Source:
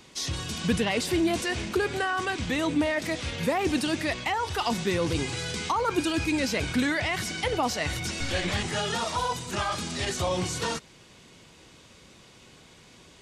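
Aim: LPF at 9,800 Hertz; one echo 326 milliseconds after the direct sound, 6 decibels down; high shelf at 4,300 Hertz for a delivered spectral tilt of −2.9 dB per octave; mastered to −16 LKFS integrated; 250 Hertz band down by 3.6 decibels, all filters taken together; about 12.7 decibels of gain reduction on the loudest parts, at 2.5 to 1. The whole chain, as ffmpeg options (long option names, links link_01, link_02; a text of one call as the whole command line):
ffmpeg -i in.wav -af "lowpass=9800,equalizer=frequency=250:width_type=o:gain=-5,highshelf=frequency=4300:gain=5.5,acompressor=threshold=-43dB:ratio=2.5,aecho=1:1:326:0.501,volume=22.5dB" out.wav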